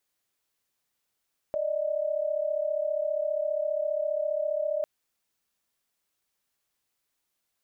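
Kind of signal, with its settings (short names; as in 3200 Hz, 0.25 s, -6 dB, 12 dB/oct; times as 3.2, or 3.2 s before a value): chord D5/D#5 sine, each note -28.5 dBFS 3.30 s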